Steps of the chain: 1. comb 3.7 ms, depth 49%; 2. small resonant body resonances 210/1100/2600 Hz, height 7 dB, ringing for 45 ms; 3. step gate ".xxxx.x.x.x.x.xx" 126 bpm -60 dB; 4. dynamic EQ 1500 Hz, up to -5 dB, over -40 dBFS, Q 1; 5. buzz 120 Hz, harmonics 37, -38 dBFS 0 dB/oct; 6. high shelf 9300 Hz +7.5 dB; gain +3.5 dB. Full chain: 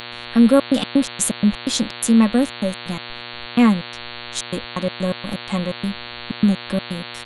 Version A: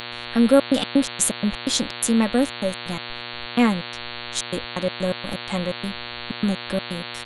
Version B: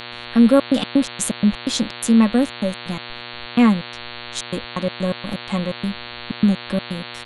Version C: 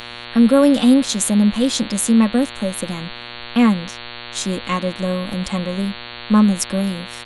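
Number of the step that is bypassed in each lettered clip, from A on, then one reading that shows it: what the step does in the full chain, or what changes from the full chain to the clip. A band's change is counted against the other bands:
2, 125 Hz band -4.5 dB; 6, 8 kHz band -3.0 dB; 3, 2 kHz band -1.5 dB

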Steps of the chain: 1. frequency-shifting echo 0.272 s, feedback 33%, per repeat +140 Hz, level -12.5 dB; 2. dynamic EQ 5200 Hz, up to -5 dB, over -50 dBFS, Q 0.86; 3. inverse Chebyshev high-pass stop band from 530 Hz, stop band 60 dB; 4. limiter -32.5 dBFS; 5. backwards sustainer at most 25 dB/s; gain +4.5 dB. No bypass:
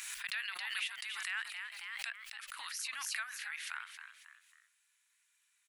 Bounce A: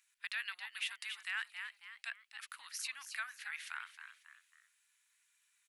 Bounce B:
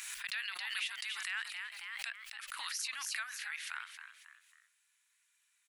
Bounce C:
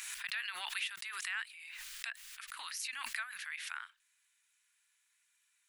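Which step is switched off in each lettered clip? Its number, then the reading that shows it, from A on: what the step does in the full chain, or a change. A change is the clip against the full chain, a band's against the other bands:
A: 5, crest factor change -3.5 dB; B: 2, momentary loudness spread change -3 LU; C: 1, momentary loudness spread change -3 LU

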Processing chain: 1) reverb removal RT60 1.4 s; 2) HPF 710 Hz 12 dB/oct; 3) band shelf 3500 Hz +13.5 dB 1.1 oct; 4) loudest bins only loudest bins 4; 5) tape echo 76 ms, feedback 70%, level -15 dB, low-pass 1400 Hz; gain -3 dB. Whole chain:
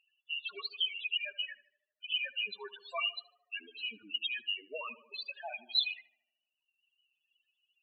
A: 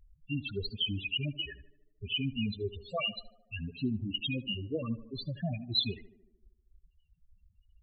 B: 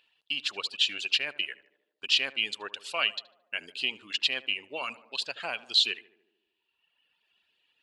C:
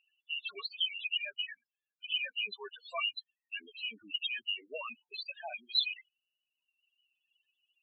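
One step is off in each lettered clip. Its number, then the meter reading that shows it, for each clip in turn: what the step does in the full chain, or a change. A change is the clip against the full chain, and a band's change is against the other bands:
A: 2, 250 Hz band +27.0 dB; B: 4, 250 Hz band +5.0 dB; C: 5, echo-to-direct -25.5 dB to none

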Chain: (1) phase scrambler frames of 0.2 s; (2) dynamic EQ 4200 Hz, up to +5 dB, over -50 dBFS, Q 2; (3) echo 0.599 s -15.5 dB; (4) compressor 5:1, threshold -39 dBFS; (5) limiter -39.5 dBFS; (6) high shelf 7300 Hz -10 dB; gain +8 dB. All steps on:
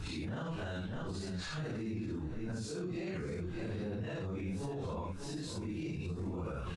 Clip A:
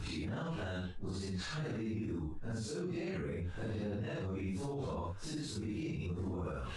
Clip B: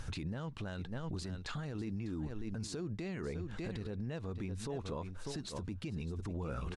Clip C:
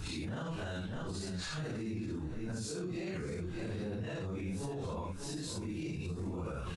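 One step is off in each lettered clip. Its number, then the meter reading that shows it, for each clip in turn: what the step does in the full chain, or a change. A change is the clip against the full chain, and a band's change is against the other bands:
3, momentary loudness spread change +1 LU; 1, 8 kHz band +2.0 dB; 6, 8 kHz band +5.0 dB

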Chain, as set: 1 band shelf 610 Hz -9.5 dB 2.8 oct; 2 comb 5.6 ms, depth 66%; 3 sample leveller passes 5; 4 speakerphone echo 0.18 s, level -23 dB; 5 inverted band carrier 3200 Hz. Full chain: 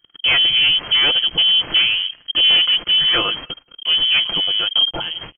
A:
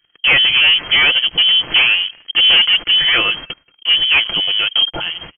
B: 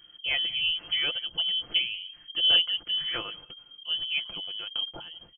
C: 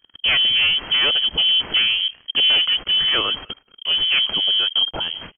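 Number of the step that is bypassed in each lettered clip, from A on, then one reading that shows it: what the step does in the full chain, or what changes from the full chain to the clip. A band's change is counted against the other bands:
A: 1, 2 kHz band +6.0 dB; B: 3, crest factor change +7.5 dB; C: 2, loudness change -2.5 LU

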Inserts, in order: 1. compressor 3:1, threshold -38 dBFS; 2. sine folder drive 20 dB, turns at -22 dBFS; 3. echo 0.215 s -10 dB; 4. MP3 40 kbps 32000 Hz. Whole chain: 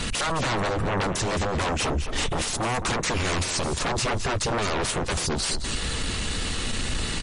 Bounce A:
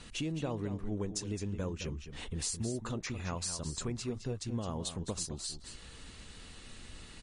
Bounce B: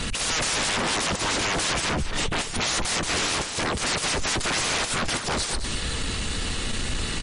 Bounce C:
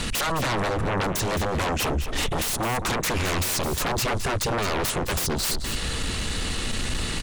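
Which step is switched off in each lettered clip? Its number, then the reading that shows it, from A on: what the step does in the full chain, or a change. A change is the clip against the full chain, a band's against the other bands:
2, crest factor change +4.5 dB; 1, mean gain reduction 8.5 dB; 4, crest factor change -3.0 dB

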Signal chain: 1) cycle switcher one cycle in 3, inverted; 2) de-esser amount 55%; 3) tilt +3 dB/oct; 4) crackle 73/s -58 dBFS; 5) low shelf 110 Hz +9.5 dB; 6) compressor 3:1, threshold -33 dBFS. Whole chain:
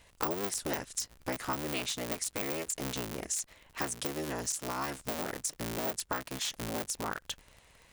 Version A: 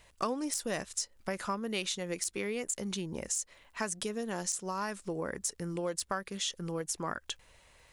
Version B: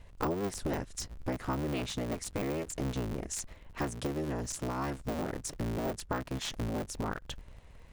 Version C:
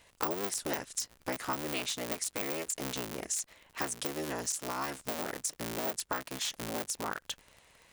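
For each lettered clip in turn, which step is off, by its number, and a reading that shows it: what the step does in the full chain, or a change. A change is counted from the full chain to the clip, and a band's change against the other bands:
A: 1, 250 Hz band +1.5 dB; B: 3, 125 Hz band +9.5 dB; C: 5, 125 Hz band -3.5 dB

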